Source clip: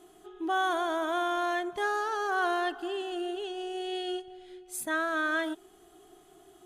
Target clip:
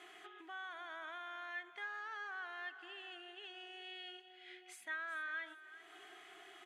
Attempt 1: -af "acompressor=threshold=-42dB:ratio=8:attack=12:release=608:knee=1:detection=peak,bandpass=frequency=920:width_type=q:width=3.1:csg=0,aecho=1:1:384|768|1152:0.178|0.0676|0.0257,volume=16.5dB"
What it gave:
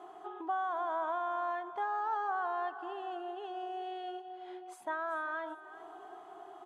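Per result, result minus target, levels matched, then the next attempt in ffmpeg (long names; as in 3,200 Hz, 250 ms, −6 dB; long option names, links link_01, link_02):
2,000 Hz band −9.0 dB; downward compressor: peak gain reduction −6 dB
-af "acompressor=threshold=-42dB:ratio=8:attack=12:release=608:knee=1:detection=peak,bandpass=frequency=2100:width_type=q:width=3.1:csg=0,aecho=1:1:384|768|1152:0.178|0.0676|0.0257,volume=16.5dB"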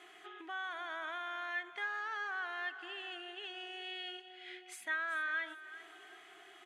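downward compressor: peak gain reduction −6 dB
-af "acompressor=threshold=-49dB:ratio=8:attack=12:release=608:knee=1:detection=peak,bandpass=frequency=2100:width_type=q:width=3.1:csg=0,aecho=1:1:384|768|1152:0.178|0.0676|0.0257,volume=16.5dB"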